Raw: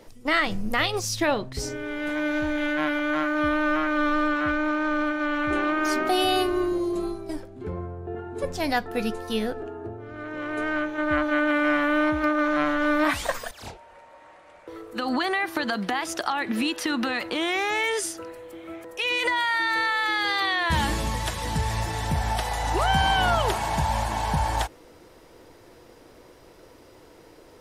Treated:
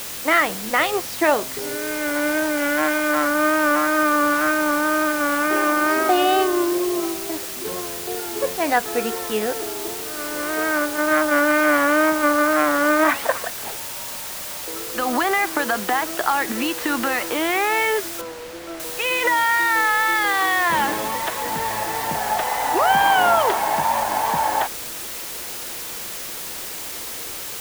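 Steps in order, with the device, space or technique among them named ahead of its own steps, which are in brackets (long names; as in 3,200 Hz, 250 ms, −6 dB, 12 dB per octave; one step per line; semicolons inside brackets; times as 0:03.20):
wax cylinder (band-pass filter 350–2,200 Hz; tape wow and flutter; white noise bed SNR 10 dB)
0:18.21–0:18.80: low-pass filter 2,000 Hz 6 dB per octave
level +7 dB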